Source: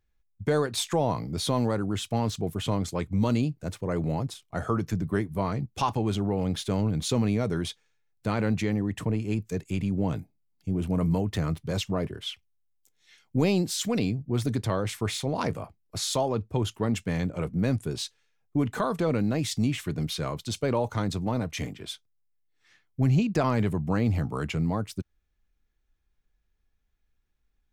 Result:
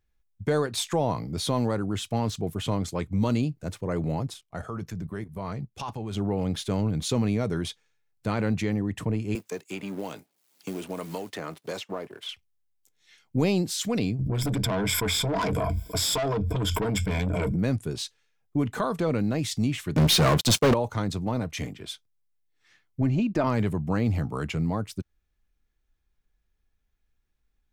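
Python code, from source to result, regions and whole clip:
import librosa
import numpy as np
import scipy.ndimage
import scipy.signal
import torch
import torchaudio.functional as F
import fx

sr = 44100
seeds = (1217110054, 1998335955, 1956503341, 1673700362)

y = fx.chain(x, sr, fx.peak_eq(hz=300.0, db=-4.0, octaves=0.41),
    fx.level_steps(step_db=11), at=(4.41, 6.17))
y = fx.chain(y, sr, fx.law_mismatch(coded='A'),
    fx.highpass(hz=380.0, slope=12),
    fx.band_squash(depth_pct=100), at=(9.35, 12.29))
y = fx.chain(y, sr, fx.ripple_eq(per_octave=1.7, db=16),
    fx.tube_stage(drive_db=25.0, bias=0.45),
    fx.env_flatten(amount_pct=100), at=(14.19, 17.56))
y = fx.chain(y, sr, fx.halfwave_gain(db=-3.0),
    fx.highpass(hz=94.0, slope=12),
    fx.leveller(passes=5), at=(19.96, 20.74))
y = fx.chain(y, sr, fx.high_shelf(hz=4000.0, db=-12.0),
    fx.comb(ms=3.3, depth=0.43), at=(23.01, 23.47))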